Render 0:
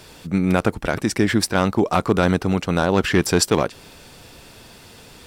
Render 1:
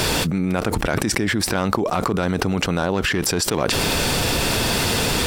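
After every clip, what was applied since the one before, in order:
envelope flattener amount 100%
level −7 dB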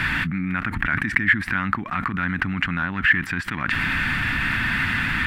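drawn EQ curve 270 Hz 0 dB, 460 Hz −24 dB, 1,800 Hz +14 dB, 5,600 Hz −20 dB, 12,000 Hz −18 dB
level −4 dB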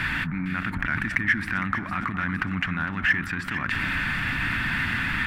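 in parallel at −11 dB: gain into a clipping stage and back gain 14.5 dB
on the sum: delay that swaps between a low-pass and a high-pass 229 ms, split 1,200 Hz, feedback 74%, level −8 dB
level −6 dB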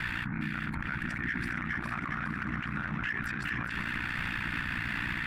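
delay that swaps between a low-pass and a high-pass 206 ms, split 1,400 Hz, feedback 77%, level −3.5 dB
ring modulation 30 Hz
brickwall limiter −20.5 dBFS, peak gain reduction 10.5 dB
level −3 dB

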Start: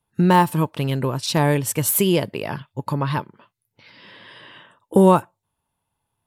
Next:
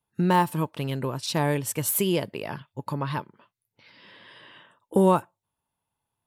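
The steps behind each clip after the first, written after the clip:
low-shelf EQ 93 Hz −5.5 dB
level −5.5 dB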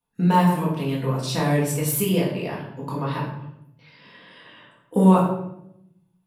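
rectangular room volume 200 cubic metres, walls mixed, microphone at 1.8 metres
level −4 dB

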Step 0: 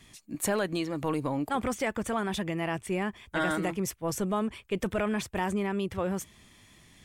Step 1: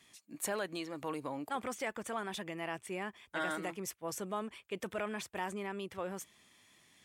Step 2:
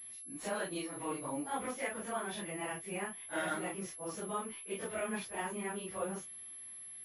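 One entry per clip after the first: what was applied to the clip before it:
high-pass filter 420 Hz 6 dB per octave; level −6 dB
random phases in long frames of 100 ms; switching amplifier with a slow clock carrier 11,000 Hz

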